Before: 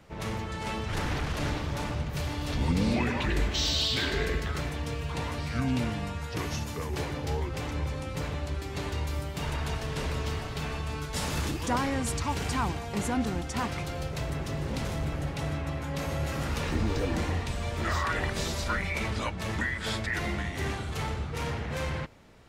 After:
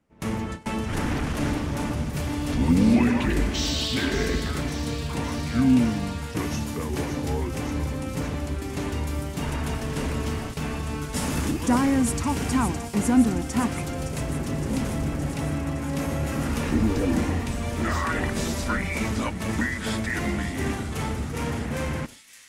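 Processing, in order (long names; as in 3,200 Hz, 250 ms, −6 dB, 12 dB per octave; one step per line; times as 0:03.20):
noise gate with hold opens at −26 dBFS
graphic EQ with 15 bands 250 Hz +10 dB, 4,000 Hz −5 dB, 10,000 Hz +5 dB
on a send: delay with a high-pass on its return 565 ms, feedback 72%, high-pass 4,000 Hz, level −7.5 dB
on the sum: level +2.5 dB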